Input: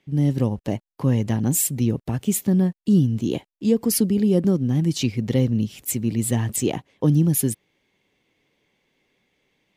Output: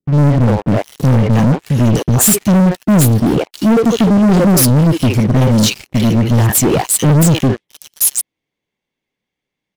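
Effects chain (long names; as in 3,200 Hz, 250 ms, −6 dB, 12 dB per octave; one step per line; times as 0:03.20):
three-band delay without the direct sound lows, mids, highs 60/670 ms, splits 420/2,500 Hz
pitch vibrato 11 Hz 30 cents
leveller curve on the samples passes 5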